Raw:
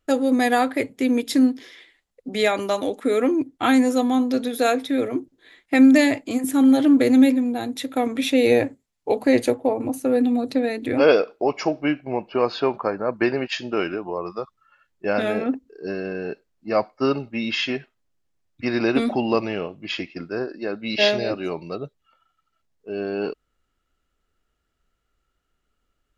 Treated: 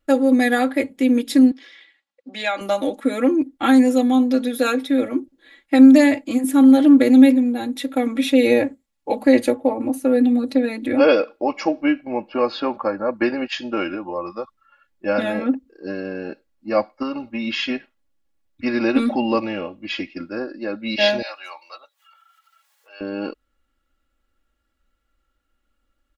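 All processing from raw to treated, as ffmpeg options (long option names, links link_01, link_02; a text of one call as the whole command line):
ffmpeg -i in.wav -filter_complex "[0:a]asettb=1/sr,asplit=3[link_01][link_02][link_03];[link_01]atrim=end=1.514[link_04];[link_02]atrim=start=1.51:end=2.61,asetpts=PTS-STARTPTS,afade=type=in:duration=0.004:curve=qsin,afade=type=out:start_time=1.096:duration=0.004:curve=qsin,highpass=340,lowpass=5400,equalizer=frequency=450:width_type=o:width=1.7:gain=-6.5[link_05];[link_03]atrim=start=2.606[link_06];[link_04][link_05]acrossfade=duration=0.004:curve1=hsin:curve2=qsin[link_07];[link_07][link_06]acrossfade=duration=0.004:curve1=qsin:curve2=hsin,asettb=1/sr,asplit=3[link_08][link_09][link_10];[link_08]atrim=end=17.024[link_11];[link_09]atrim=start=17.02:end=17.47,asetpts=PTS-STARTPTS,afade=type=in:duration=0.004:curve=qsin,afade=type=out:start_time=0.446:duration=0.004:curve=qsin,acompressor=threshold=-23dB:ratio=4:attack=3.2:release=140:knee=1:detection=peak,equalizer=frequency=1000:width=4.8:gain=9.5[link_12];[link_10]atrim=start=17.466[link_13];[link_11][link_12]acrossfade=duration=0.004:curve1=hsin:curve2=qsin[link_14];[link_14][link_13]acrossfade=duration=0.004:curve1=qsin:curve2=hsin,asettb=1/sr,asplit=3[link_15][link_16][link_17];[link_15]atrim=end=21.224[link_18];[link_16]atrim=start=21.22:end=23.01,asetpts=PTS-STARTPTS,afade=type=in:duration=0.004:curve=qsin,afade=type=out:start_time=1.786:duration=0.004:curve=qsin,highpass=frequency=850:width=0.5412,highpass=frequency=850:width=1.3066,highshelf=frequency=7200:gain=5.5,acompressor=mode=upward:threshold=-46dB:ratio=2.5:attack=3.2:release=140:knee=2.83:detection=peak[link_19];[link_17]atrim=start=23.006[link_20];[link_18][link_19]acrossfade=duration=0.004:curve1=hsin:curve2=qsin[link_21];[link_21][link_20]acrossfade=duration=0.004:curve1=qsin:curve2=hsin,equalizer=frequency=6300:width=1.4:gain=-3.5,aecho=1:1:3.6:0.84,volume=-1dB" out.wav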